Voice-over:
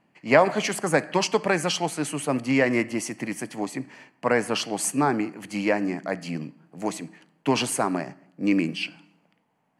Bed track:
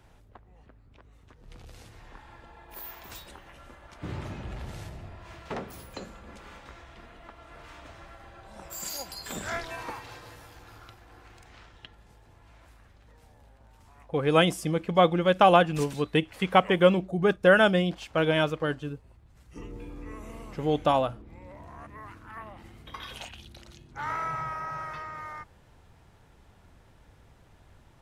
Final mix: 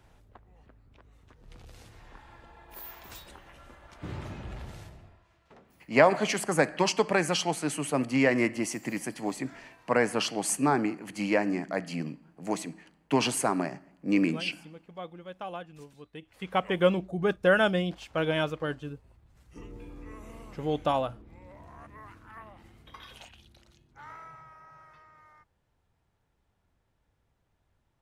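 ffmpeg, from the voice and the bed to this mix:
-filter_complex "[0:a]adelay=5650,volume=-2.5dB[a];[1:a]volume=15dB,afade=t=out:st=4.56:d=0.72:silence=0.11885,afade=t=in:st=16.2:d=0.64:silence=0.141254,afade=t=out:st=22:d=2.43:silence=0.199526[b];[a][b]amix=inputs=2:normalize=0"

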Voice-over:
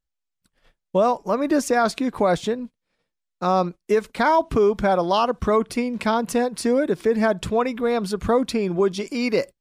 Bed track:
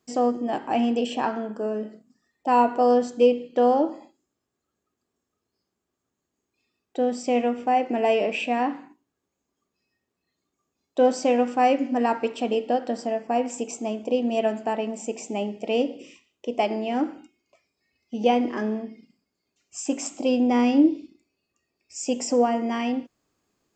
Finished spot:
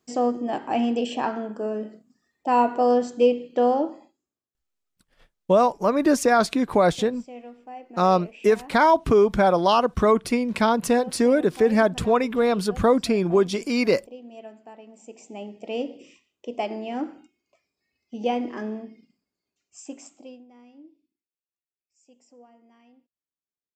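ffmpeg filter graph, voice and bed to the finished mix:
-filter_complex "[0:a]adelay=4550,volume=1dB[a];[1:a]volume=13.5dB,afade=t=out:st=3.63:d=0.86:silence=0.125893,afade=t=in:st=14.86:d=1.07:silence=0.199526,afade=t=out:st=19.12:d=1.33:silence=0.0446684[b];[a][b]amix=inputs=2:normalize=0"

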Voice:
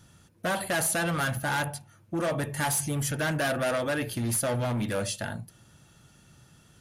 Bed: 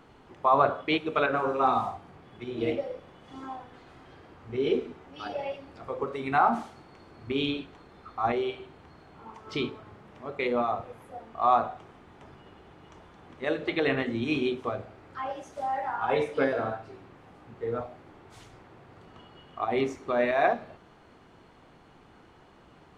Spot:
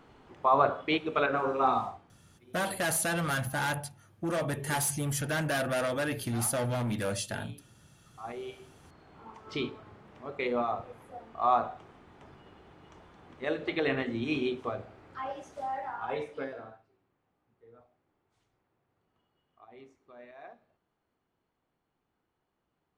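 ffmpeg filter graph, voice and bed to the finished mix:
-filter_complex "[0:a]adelay=2100,volume=-2.5dB[a];[1:a]volume=16.5dB,afade=t=out:st=1.73:d=0.46:silence=0.105925,afade=t=in:st=8.07:d=1.11:silence=0.11885,afade=t=out:st=15.44:d=1.44:silence=0.0749894[b];[a][b]amix=inputs=2:normalize=0"

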